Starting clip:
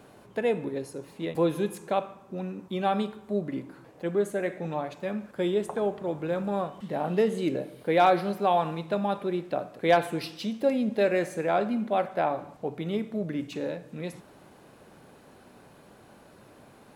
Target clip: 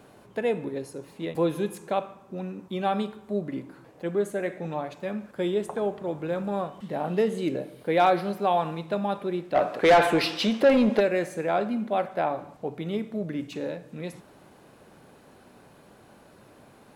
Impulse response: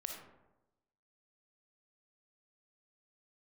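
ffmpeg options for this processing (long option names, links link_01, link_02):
-filter_complex "[0:a]asplit=3[link_01][link_02][link_03];[link_01]afade=type=out:start_time=9.54:duration=0.02[link_04];[link_02]asplit=2[link_05][link_06];[link_06]highpass=frequency=720:poles=1,volume=23dB,asoftclip=type=tanh:threshold=-9dB[link_07];[link_05][link_07]amix=inputs=2:normalize=0,lowpass=frequency=2400:poles=1,volume=-6dB,afade=type=in:start_time=9.54:duration=0.02,afade=type=out:start_time=10.99:duration=0.02[link_08];[link_03]afade=type=in:start_time=10.99:duration=0.02[link_09];[link_04][link_08][link_09]amix=inputs=3:normalize=0"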